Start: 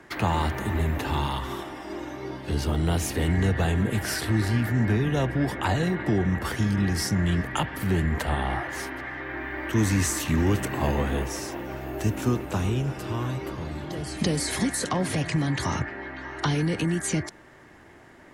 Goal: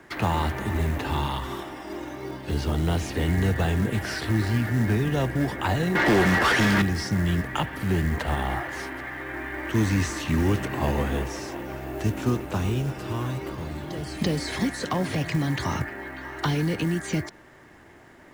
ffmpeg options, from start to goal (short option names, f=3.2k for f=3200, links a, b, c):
-filter_complex "[0:a]acrossover=split=5700[a][b];[b]acompressor=threshold=-49dB:ratio=4:attack=1:release=60[c];[a][c]amix=inputs=2:normalize=0,acrusher=bits=6:mode=log:mix=0:aa=0.000001,asettb=1/sr,asplit=3[d][e][f];[d]atrim=end=5.954[g];[e]atrim=start=5.95:end=6.82,asetpts=PTS-STARTPTS,afade=t=in:d=0.004:c=qsin,afade=t=out:st=0.866:d=0.004:c=qsin,asplit=2[h][i];[i]highpass=f=720:p=1,volume=25dB,asoftclip=type=tanh:threshold=-11.5dB[j];[h][j]amix=inputs=2:normalize=0,lowpass=f=4.1k:p=1,volume=-6dB[k];[f]atrim=start=6.816[l];[g][k]acrossfade=d=0.004:c1=hsin:c2=qsin[m];[m][l]acrossfade=d=0.004:c1=qsin:c2=hsin"